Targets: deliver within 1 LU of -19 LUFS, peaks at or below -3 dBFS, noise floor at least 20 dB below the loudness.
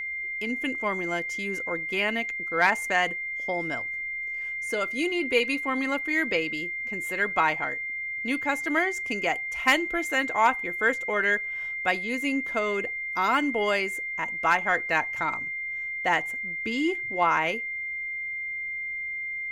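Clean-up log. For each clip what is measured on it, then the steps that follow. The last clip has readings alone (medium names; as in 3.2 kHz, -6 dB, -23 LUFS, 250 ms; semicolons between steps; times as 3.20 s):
steady tone 2.1 kHz; tone level -30 dBFS; loudness -26.5 LUFS; peak level -9.5 dBFS; loudness target -19.0 LUFS
-> band-stop 2.1 kHz, Q 30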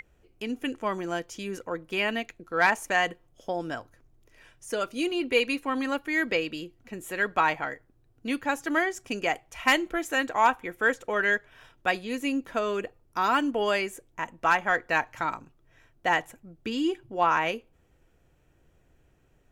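steady tone not found; loudness -27.5 LUFS; peak level -10.0 dBFS; loudness target -19.0 LUFS
-> trim +8.5 dB; peak limiter -3 dBFS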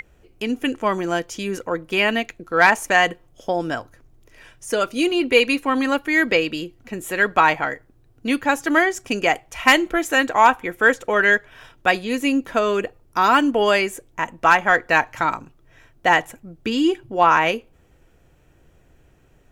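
loudness -19.5 LUFS; peak level -3.0 dBFS; noise floor -56 dBFS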